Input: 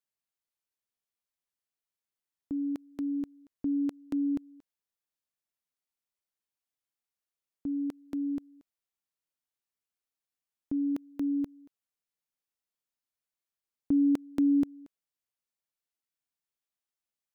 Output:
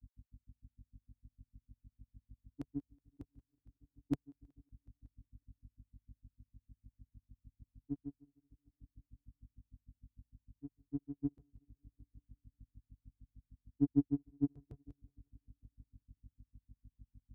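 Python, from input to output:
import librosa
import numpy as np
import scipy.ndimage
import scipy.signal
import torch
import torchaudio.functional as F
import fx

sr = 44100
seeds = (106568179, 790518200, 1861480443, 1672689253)

p1 = fx.octave_divider(x, sr, octaves=1, level_db=-5.0)
p2 = fx.low_shelf(p1, sr, hz=360.0, db=6.5)
p3 = fx.add_hum(p2, sr, base_hz=50, snr_db=10)
p4 = fx.auto_swell(p3, sr, attack_ms=545.0)
p5 = fx.granulator(p4, sr, seeds[0], grain_ms=86.0, per_s=6.6, spray_ms=243.0, spread_st=0)
p6 = scipy.signal.sosfilt(scipy.signal.butter(2, 43.0, 'highpass', fs=sr, output='sos'), p5)
p7 = fx.peak_eq(p6, sr, hz=180.0, db=-13.0, octaves=0.48)
p8 = p7 + fx.echo_heads(p7, sr, ms=185, heads='first and second', feedback_pct=59, wet_db=-18.0, dry=0)
p9 = fx.upward_expand(p8, sr, threshold_db=-57.0, expansion=2.5)
y = p9 * 10.0 ** (9.0 / 20.0)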